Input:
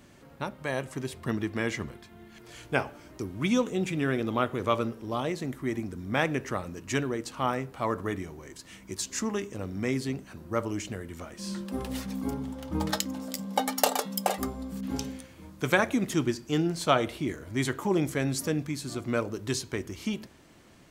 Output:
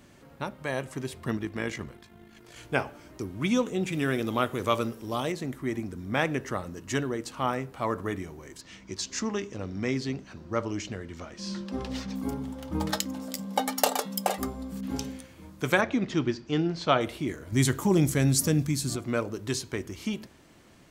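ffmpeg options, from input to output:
ffmpeg -i in.wav -filter_complex "[0:a]asettb=1/sr,asplit=3[link_01][link_02][link_03];[link_01]atrim=end=1.374[link_04];[link_02]atrim=start=1.37:end=2.57,asetpts=PTS-STARTPTS,afade=type=in:duration=0.004:curve=qsin,afade=type=out:start_time=1.196:duration=0.004:curve=qsin,tremolo=f=52:d=0.519[link_05];[link_03]atrim=start=2.566[link_06];[link_04][link_05]acrossfade=duration=0.004:curve1=hsin:curve2=qsin[link_07];[link_07][link_06]acrossfade=duration=0.004:curve1=qsin:curve2=hsin,asettb=1/sr,asplit=3[link_08][link_09][link_10];[link_08]atrim=end=3.924[link_11];[link_09]atrim=start=3.92:end=5.32,asetpts=PTS-STARTPTS,afade=type=in:duration=0.004:curve=qsin,afade=type=out:start_time=1.396:duration=0.004:curve=qsin,highshelf=frequency=4600:gain=10.5[link_12];[link_10]atrim=start=5.316[link_13];[link_11][link_12]acrossfade=duration=0.004:curve1=hsin:curve2=qsin[link_14];[link_14][link_13]acrossfade=duration=0.004:curve1=qsin:curve2=hsin,asettb=1/sr,asplit=3[link_15][link_16][link_17];[link_15]atrim=end=6.374[link_18];[link_16]atrim=start=6.37:end=7.18,asetpts=PTS-STARTPTS,afade=type=in:duration=0.004:curve=qsin,afade=type=out:start_time=0.806:duration=0.004:curve=qsin,bandreject=frequency=2400:width=8.5[link_19];[link_17]atrim=start=7.176[link_20];[link_18][link_19]acrossfade=duration=0.004:curve1=hsin:curve2=qsin[link_21];[link_21][link_20]acrossfade=duration=0.004:curve1=qsin:curve2=hsin,asettb=1/sr,asplit=3[link_22][link_23][link_24];[link_22]atrim=end=8.614[link_25];[link_23]atrim=start=8.61:end=12.16,asetpts=PTS-STARTPTS,afade=type=in:duration=0.004:curve=qsin,afade=type=out:start_time=3.546:duration=0.004:curve=qsin,highshelf=frequency=7900:width_type=q:width=1.5:gain=-13.5[link_26];[link_24]atrim=start=12.156[link_27];[link_25][link_26]acrossfade=duration=0.004:curve1=hsin:curve2=qsin[link_28];[link_28][link_27]acrossfade=duration=0.004:curve1=qsin:curve2=hsin,asettb=1/sr,asplit=3[link_29][link_30][link_31];[link_29]atrim=end=15.814[link_32];[link_30]atrim=start=15.81:end=17.01,asetpts=PTS-STARTPTS,afade=type=in:duration=0.004:curve=qsin,afade=type=out:start_time=1.196:duration=0.004:curve=qsin,lowpass=frequency=5300:width=0.5412,lowpass=frequency=5300:width=1.3066[link_33];[link_31]atrim=start=17.006[link_34];[link_32][link_33]acrossfade=duration=0.004:curve1=hsin:curve2=qsin[link_35];[link_35][link_34]acrossfade=duration=0.004:curve1=qsin:curve2=hsin,asettb=1/sr,asplit=3[link_36][link_37][link_38];[link_36]atrim=end=17.524[link_39];[link_37]atrim=start=17.52:end=18.96,asetpts=PTS-STARTPTS,afade=type=in:duration=0.004:curve=qsin,afade=type=out:start_time=1.436:duration=0.004:curve=qsin,bass=frequency=250:gain=9,treble=frequency=4000:gain=9[link_40];[link_38]atrim=start=18.956[link_41];[link_39][link_40]acrossfade=duration=0.004:curve1=hsin:curve2=qsin[link_42];[link_42][link_41]acrossfade=duration=0.004:curve1=qsin:curve2=hsin" out.wav

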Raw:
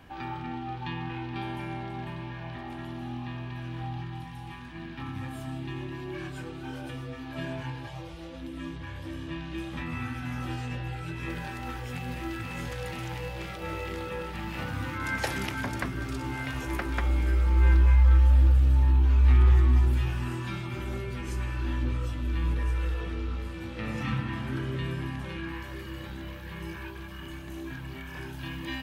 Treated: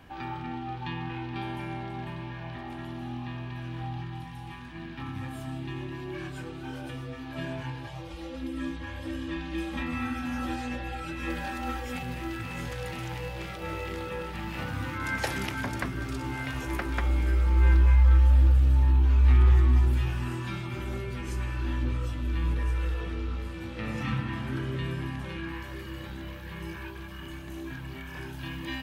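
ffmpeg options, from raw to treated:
ffmpeg -i in.wav -filter_complex "[0:a]asettb=1/sr,asplit=3[link_01][link_02][link_03];[link_01]atrim=end=8.104[link_04];[link_02]atrim=start=8.1:end=12.03,asetpts=PTS-STARTPTS,afade=type=in:duration=0.004:curve=qsin,afade=type=out:start_time=3.926:duration=0.004:curve=qsin,aecho=1:1:3.7:0.92,atrim=end_sample=173313[link_05];[link_03]atrim=start=12.026[link_06];[link_04][link_05]acrossfade=duration=0.004:curve1=hsin:curve2=qsin[link_07];[link_07][link_06]acrossfade=duration=0.004:curve1=qsin:curve2=hsin" out.wav

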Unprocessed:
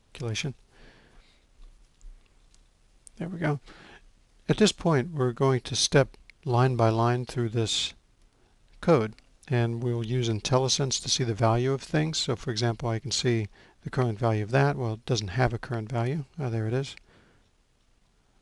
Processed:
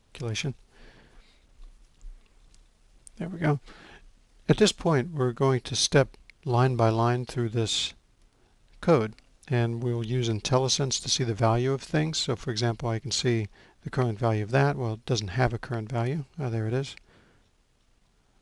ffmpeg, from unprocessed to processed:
ffmpeg -i in.wav -filter_complex "[0:a]asplit=3[link_01][link_02][link_03];[link_01]afade=type=out:start_time=0.46:duration=0.02[link_04];[link_02]aphaser=in_gain=1:out_gain=1:delay=4.7:decay=0.31:speed=2:type=sinusoidal,afade=type=in:start_time=0.46:duration=0.02,afade=type=out:start_time=4.89:duration=0.02[link_05];[link_03]afade=type=in:start_time=4.89:duration=0.02[link_06];[link_04][link_05][link_06]amix=inputs=3:normalize=0" out.wav

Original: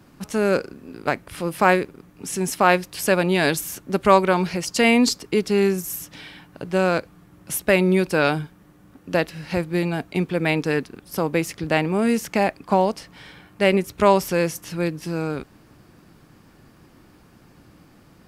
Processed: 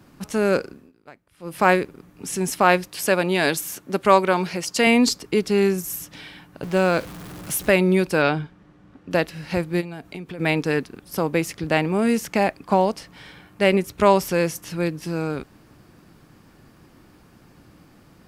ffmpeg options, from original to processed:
ffmpeg -i in.wav -filter_complex "[0:a]asettb=1/sr,asplit=3[link_01][link_02][link_03];[link_01]atrim=end=2.884[link_04];[link_02]atrim=start=2.88:end=4.87,asetpts=PTS-STARTPTS,afade=type=in:duration=0.004:curve=qsin,afade=type=out:start_time=1.986:duration=0.004:curve=qsin,highpass=frequency=200:poles=1[link_05];[link_03]atrim=start=4.866[link_06];[link_04][link_05]acrossfade=duration=0.004:curve1=hsin:curve2=qsin[link_07];[link_07][link_06]acrossfade=duration=0.004:curve1=qsin:curve2=hsin,asettb=1/sr,asplit=3[link_08][link_09][link_10];[link_08]atrim=end=6.634[link_11];[link_09]atrim=start=6.63:end=7.7,asetpts=PTS-STARTPTS,afade=type=in:duration=0.004:curve=qsin,afade=type=out:start_time=1.066:duration=0.004:curve=qsin,aeval=exprs='val(0)+0.5*0.0211*sgn(val(0))':channel_layout=same[link_12];[link_10]atrim=start=7.696[link_13];[link_11][link_12]acrossfade=duration=0.004:curve1=hsin:curve2=qsin[link_14];[link_14][link_13]acrossfade=duration=0.004:curve1=qsin:curve2=hsin,asettb=1/sr,asplit=3[link_15][link_16][link_17];[link_15]atrim=end=8.224[link_18];[link_16]atrim=start=8.22:end=9.11,asetpts=PTS-STARTPTS,afade=type=in:duration=0.004:curve=qsin,afade=type=out:start_time=0.886:duration=0.004:curve=qsin,lowpass=4500[link_19];[link_17]atrim=start=9.106[link_20];[link_18][link_19]acrossfade=duration=0.004:curve1=hsin:curve2=qsin[link_21];[link_21][link_20]acrossfade=duration=0.004:curve1=qsin:curve2=hsin,asplit=3[link_22][link_23][link_24];[link_22]afade=type=out:start_time=9.8:duration=0.02[link_25];[link_23]acompressor=threshold=-30dB:ratio=12:attack=3.2:release=140:knee=1:detection=peak,afade=type=in:start_time=9.8:duration=0.02,afade=type=out:start_time=10.38:duration=0.02[link_26];[link_24]afade=type=in:start_time=10.38:duration=0.02[link_27];[link_25][link_26][link_27]amix=inputs=3:normalize=0,asplit=3[link_28][link_29][link_30];[link_28]atrim=end=0.92,asetpts=PTS-STARTPTS,afade=type=out:start_time=0.58:duration=0.34:curve=qsin:silence=0.0749894[link_31];[link_29]atrim=start=0.92:end=1.39,asetpts=PTS-STARTPTS,volume=-22.5dB[link_32];[link_30]atrim=start=1.39,asetpts=PTS-STARTPTS,afade=type=in:duration=0.34:curve=qsin:silence=0.0749894[link_33];[link_31][link_32][link_33]concat=n=3:v=0:a=1" out.wav

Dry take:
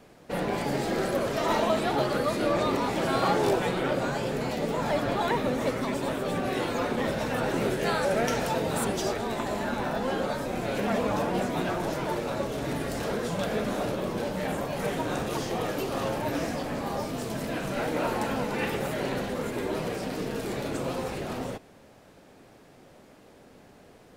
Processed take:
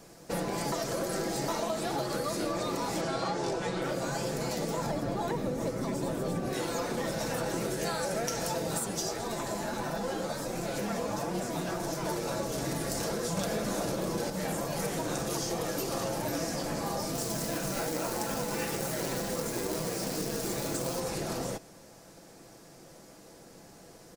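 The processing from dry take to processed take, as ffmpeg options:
ffmpeg -i in.wav -filter_complex "[0:a]asettb=1/sr,asplit=3[link_01][link_02][link_03];[link_01]atrim=end=3.014[link_04];[link_02]atrim=start=3.01:end=3.82,asetpts=PTS-STARTPTS,afade=type=in:duration=0.004:curve=qsin,afade=type=out:start_time=0.806:duration=0.004:curve=qsin,lowpass=6200[link_05];[link_03]atrim=start=3.816[link_06];[link_04][link_05]acrossfade=duration=0.004:curve1=hsin:curve2=qsin[link_07];[link_07][link_06]acrossfade=duration=0.004:curve1=qsin:curve2=hsin,asettb=1/sr,asplit=3[link_08][link_09][link_10];[link_08]atrim=end=4.864[link_11];[link_09]atrim=start=4.86:end=6.53,asetpts=PTS-STARTPTS,afade=type=in:duration=0.004:curve=qsin,afade=type=out:start_time=1.666:duration=0.004:curve=qsin,tiltshelf=frequency=700:gain=5[link_12];[link_10]atrim=start=6.526[link_13];[link_11][link_12]acrossfade=duration=0.004:curve1=hsin:curve2=qsin[link_14];[link_14][link_13]acrossfade=duration=0.004:curve1=qsin:curve2=hsin,asplit=3[link_15][link_16][link_17];[link_15]afade=type=out:start_time=8.78:duration=0.02[link_18];[link_16]flanger=delay=4.6:depth=8.5:regen=-30:speed=1.5:shape=triangular,afade=type=in:start_time=8.78:duration=0.02,afade=type=out:start_time=12.04:duration=0.02[link_19];[link_17]afade=type=in:start_time=12.04:duration=0.02[link_20];[link_18][link_19][link_20]amix=inputs=3:normalize=0,asettb=1/sr,asplit=3[link_21][link_22][link_23];[link_21]atrim=end=17.154[link_24];[link_22]atrim=start=17.15:end=21,asetpts=PTS-STARTPTS,afade=type=in:duration=0.004:curve=qsin,afade=type=out:start_time=3.846:duration=0.004:curve=qsin,acrusher=bits=3:mode=log:mix=0:aa=0.000001[link_25];[link_23]atrim=start=20.996[link_26];[link_24][link_25]acrossfade=duration=0.004:curve1=hsin:curve2=qsin[link_27];[link_27][link_26]acrossfade=duration=0.004:curve1=qsin:curve2=hsin,asplit=5[link_28][link_29][link_30][link_31][link_32];[link_28]atrim=end=0.722[link_33];[link_29]atrim=start=0.718:end=1.482,asetpts=PTS-STARTPTS,areverse[link_34];[link_30]atrim=start=1.478:end=13.372[link_35];[link_31]atrim=start=13.368:end=14.302,asetpts=PTS-STARTPTS,volume=5.5dB[link_36];[link_32]atrim=start=14.298[link_37];[link_33][link_34]acrossfade=duration=0.004:curve1=hsin:curve2=hsin[link_38];[link_38][link_35]acrossfade=duration=0.004:curve1=hsin:curve2=hsin[link_39];[link_39][link_36]acrossfade=duration=0.004:curve1=hsin:curve2=hsin[link_40];[link_40][link_37]acrossfade=duration=0.004:curve1=hsin:curve2=hsin,highshelf=frequency=4200:width_type=q:width=1.5:gain=8,aecho=1:1:6:0.37,acompressor=threshold=-29dB:ratio=6" out.wav

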